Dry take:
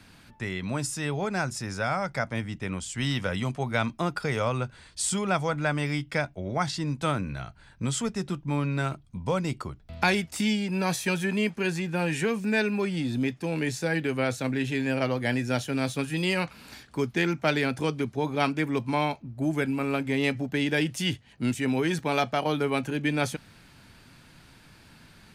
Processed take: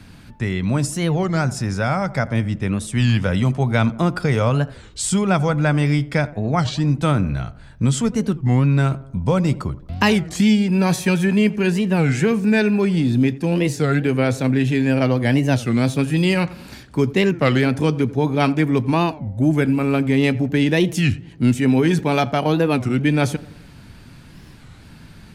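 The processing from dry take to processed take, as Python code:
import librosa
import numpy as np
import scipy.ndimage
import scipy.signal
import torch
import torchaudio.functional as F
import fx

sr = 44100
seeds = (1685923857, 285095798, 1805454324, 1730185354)

y = fx.low_shelf(x, sr, hz=330.0, db=9.5)
y = fx.echo_tape(y, sr, ms=87, feedback_pct=61, wet_db=-16.5, lp_hz=1200.0, drive_db=4.0, wow_cents=30)
y = fx.record_warp(y, sr, rpm=33.33, depth_cents=250.0)
y = y * librosa.db_to_amplitude(4.5)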